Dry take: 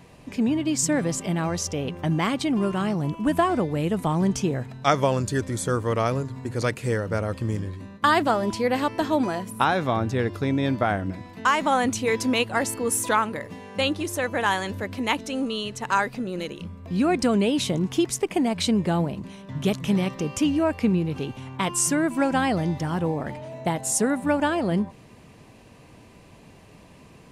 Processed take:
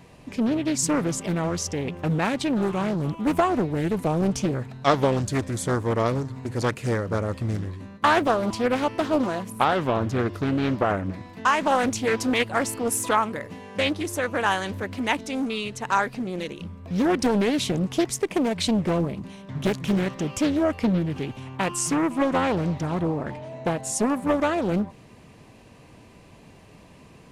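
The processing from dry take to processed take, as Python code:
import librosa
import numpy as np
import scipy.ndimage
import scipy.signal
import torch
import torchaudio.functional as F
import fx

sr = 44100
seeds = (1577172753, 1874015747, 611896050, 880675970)

y = fx.high_shelf(x, sr, hz=11000.0, db=-11.0, at=(21.76, 24.1))
y = fx.doppler_dist(y, sr, depth_ms=0.7)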